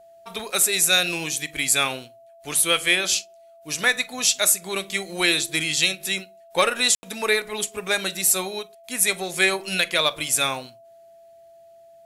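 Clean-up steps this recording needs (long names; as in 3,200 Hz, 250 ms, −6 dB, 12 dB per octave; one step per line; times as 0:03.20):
clipped peaks rebuilt −7 dBFS
notch filter 670 Hz, Q 30
ambience match 0:06.95–0:07.03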